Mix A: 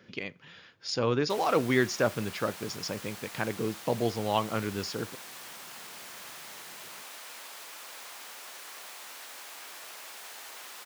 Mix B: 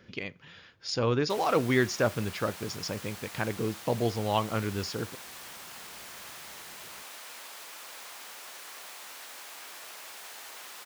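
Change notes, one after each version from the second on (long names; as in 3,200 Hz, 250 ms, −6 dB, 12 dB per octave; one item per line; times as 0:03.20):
master: remove high-pass filter 120 Hz 12 dB per octave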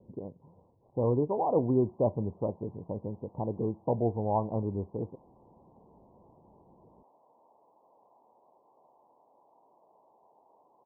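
background −9.0 dB
master: add Butterworth low-pass 1,000 Hz 96 dB per octave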